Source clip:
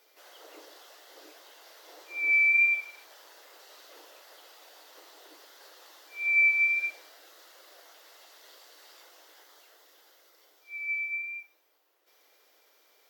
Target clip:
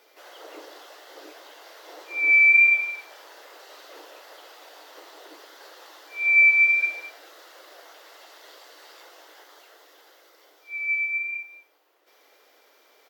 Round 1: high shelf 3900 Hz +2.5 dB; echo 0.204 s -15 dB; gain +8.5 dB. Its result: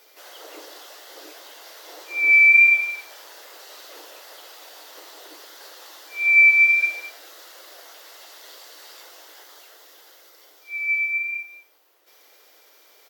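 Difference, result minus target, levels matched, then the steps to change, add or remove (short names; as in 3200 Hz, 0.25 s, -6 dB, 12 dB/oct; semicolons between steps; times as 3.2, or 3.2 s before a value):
8000 Hz band +5.5 dB
change: high shelf 3900 Hz -8 dB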